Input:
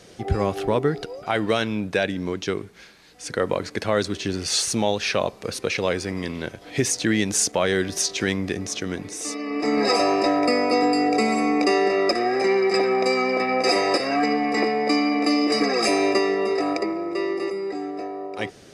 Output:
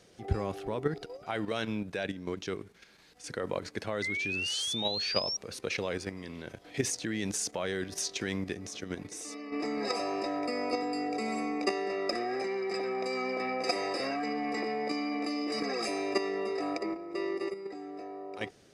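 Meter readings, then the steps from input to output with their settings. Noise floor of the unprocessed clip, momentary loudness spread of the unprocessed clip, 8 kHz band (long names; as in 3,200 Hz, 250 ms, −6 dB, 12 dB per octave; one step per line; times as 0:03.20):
−47 dBFS, 10 LU, −11.0 dB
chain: sound drawn into the spectrogram rise, 0:04.02–0:05.37, 2,000–5,700 Hz −22 dBFS
output level in coarse steps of 9 dB
level −6 dB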